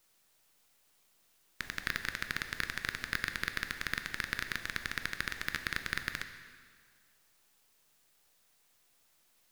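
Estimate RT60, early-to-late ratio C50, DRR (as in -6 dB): 1.9 s, 9.5 dB, 8.0 dB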